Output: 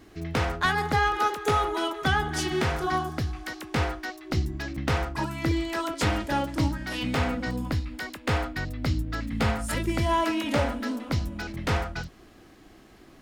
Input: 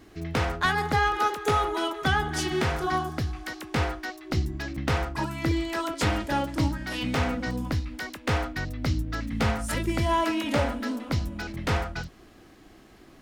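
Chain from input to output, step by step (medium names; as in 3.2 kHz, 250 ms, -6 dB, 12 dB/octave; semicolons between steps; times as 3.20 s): 7.08–9.76 s: band-stop 5.9 kHz, Q 13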